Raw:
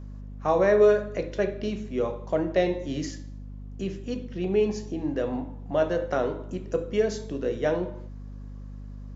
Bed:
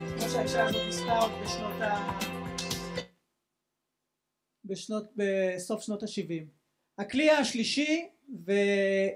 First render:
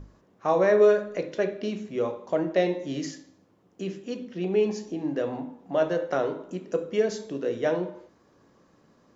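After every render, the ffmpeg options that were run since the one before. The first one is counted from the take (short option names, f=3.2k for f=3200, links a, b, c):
-af "bandreject=f=50:t=h:w=6,bandreject=f=100:t=h:w=6,bandreject=f=150:t=h:w=6,bandreject=f=200:t=h:w=6,bandreject=f=250:t=h:w=6"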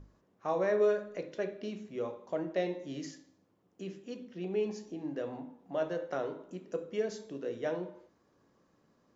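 -af "volume=-9dB"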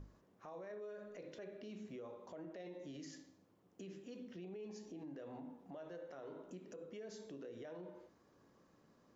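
-af "acompressor=threshold=-46dB:ratio=2,alimiter=level_in=18.5dB:limit=-24dB:level=0:latency=1:release=65,volume=-18.5dB"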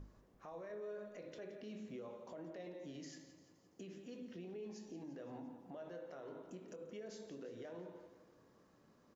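-filter_complex "[0:a]asplit=2[a][b];[b]adelay=24,volume=-13.5dB[c];[a][c]amix=inputs=2:normalize=0,aecho=1:1:172|344|516|688|860|1032:0.237|0.128|0.0691|0.0373|0.0202|0.0109"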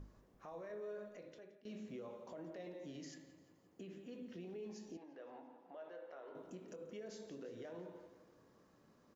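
-filter_complex "[0:a]asettb=1/sr,asplit=3[a][b][c];[a]atrim=end=3.144[d];[b]atrim=start=3.14:end=4.29,asetpts=PTS-STARTPTS,afade=t=in:d=0.004:c=qsin,afade=t=out:st=1.146:d=0.004:c=qsin,equalizer=f=5.6k:t=o:w=0.77:g=-8.5[e];[c]atrim=start=4.286[f];[d][e]acrossfade=d=0.004:c1=hsin:c2=qsin[g];[g][f]acrossfade=d=0.004:c1=qsin:c2=hsin,asettb=1/sr,asplit=3[h][i][j];[h]atrim=end=4.974[k];[i]atrim=start=4.97:end=6.35,asetpts=PTS-STARTPTS,afade=t=in:d=0.004:c=qsin,afade=t=out:st=1.376:d=0.004:c=qsin,highpass=460,lowpass=3.3k[l];[j]atrim=start=6.346[m];[k][l]acrossfade=d=0.004:c1=hsin:c2=qsin[n];[n][m]acrossfade=d=0.004:c1=qsin:c2=hsin,asplit=2[o][p];[o]atrim=end=1.65,asetpts=PTS-STARTPTS,afade=t=out:st=1:d=0.65:silence=0.112202[q];[p]atrim=start=1.65,asetpts=PTS-STARTPTS,afade=t=in:d=0.004:c=hsin:silence=0.112202[r];[q][r]concat=n=2:v=0:a=1"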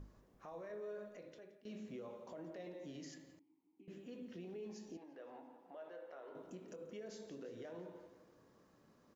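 -filter_complex "[0:a]asettb=1/sr,asplit=3[a][b][c];[a]atrim=end=3.394[d];[b]atrim=start=3.39:end=3.88,asetpts=PTS-STARTPTS,afade=t=in:d=0.004:c=qsin,afade=t=out:st=0.486:d=0.004:c=qsin,asplit=3[e][f][g];[e]bandpass=f=300:t=q:w=8,volume=0dB[h];[f]bandpass=f=870:t=q:w=8,volume=-6dB[i];[g]bandpass=f=2.24k:t=q:w=8,volume=-9dB[j];[h][i][j]amix=inputs=3:normalize=0[k];[c]atrim=start=3.876[l];[d][k]acrossfade=d=0.004:c1=hsin:c2=qsin[m];[m][l]acrossfade=d=0.004:c1=qsin:c2=hsin"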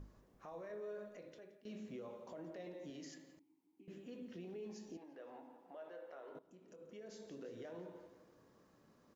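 -filter_complex "[0:a]asettb=1/sr,asplit=3[a][b][c];[a]atrim=end=2.904[d];[b]atrim=start=2.9:end=3.37,asetpts=PTS-STARTPTS,afade=t=in:d=0.004:c=qsin,afade=t=out:st=0.466:d=0.004:c=qsin,highpass=170[e];[c]atrim=start=3.366[f];[d][e]acrossfade=d=0.004:c1=hsin:c2=qsin[g];[g][f]acrossfade=d=0.004:c1=qsin:c2=hsin,asplit=2[h][i];[h]atrim=end=6.39,asetpts=PTS-STARTPTS,afade=t=out:st=6.386:d=0.004:c=hsin:silence=0.149624[j];[i]atrim=start=6.39,asetpts=PTS-STARTPTS,afade=t=in:d=1.05:silence=0.149624[k];[j][k]concat=n=2:v=0:a=1"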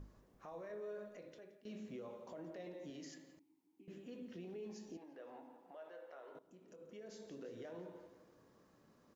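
-filter_complex "[0:a]asettb=1/sr,asplit=3[a][b][c];[a]atrim=end=5.714[d];[b]atrim=start=5.71:end=6.41,asetpts=PTS-STARTPTS,afade=t=in:d=0.004:c=qsin,afade=t=out:st=0.696:d=0.004:c=qsin,equalizer=f=190:w=0.53:g=-5.5[e];[c]atrim=start=6.406[f];[d][e]acrossfade=d=0.004:c1=hsin:c2=qsin[g];[g][f]acrossfade=d=0.004:c1=qsin:c2=hsin"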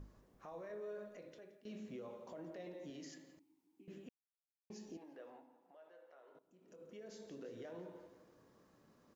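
-filter_complex "[0:a]asplit=5[a][b][c][d][e];[a]atrim=end=4.09,asetpts=PTS-STARTPTS,afade=t=out:st=4.086:d=0.004:c=hsin[f];[b]atrim=start=4.09:end=4.7,asetpts=PTS-STARTPTS,volume=0[g];[c]atrim=start=4.7:end=5.47,asetpts=PTS-STARTPTS,afade=t=in:d=0.004:c=hsin,afade=t=out:st=0.5:d=0.27:silence=0.398107[h];[d]atrim=start=5.47:end=6.53,asetpts=PTS-STARTPTS,volume=-8dB[i];[e]atrim=start=6.53,asetpts=PTS-STARTPTS,afade=t=in:d=0.27:silence=0.398107[j];[f][g][h][i][j]concat=n=5:v=0:a=1"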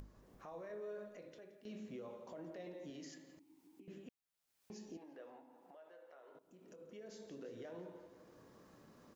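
-af "acompressor=mode=upward:threshold=-54dB:ratio=2.5"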